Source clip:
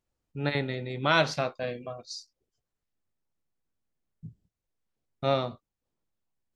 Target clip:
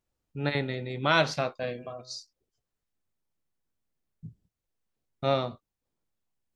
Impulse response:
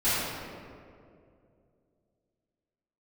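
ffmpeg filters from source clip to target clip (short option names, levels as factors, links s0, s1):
-filter_complex "[0:a]asplit=3[s0][s1][s2];[s0]afade=t=out:st=1.77:d=0.02[s3];[s1]bandreject=f=126.8:t=h:w=4,bandreject=f=253.6:t=h:w=4,bandreject=f=380.4:t=h:w=4,bandreject=f=507.2:t=h:w=4,bandreject=f=634:t=h:w=4,bandreject=f=760.8:t=h:w=4,bandreject=f=887.6:t=h:w=4,bandreject=f=1014.4:t=h:w=4,bandreject=f=1141.2:t=h:w=4,bandreject=f=1268:t=h:w=4,bandreject=f=1394.8:t=h:w=4,bandreject=f=1521.6:t=h:w=4,bandreject=f=1648.4:t=h:w=4,bandreject=f=1775.2:t=h:w=4,bandreject=f=1902:t=h:w=4,bandreject=f=2028.8:t=h:w=4,afade=t=in:st=1.77:d=0.02,afade=t=out:st=2.18:d=0.02[s4];[s2]afade=t=in:st=2.18:d=0.02[s5];[s3][s4][s5]amix=inputs=3:normalize=0"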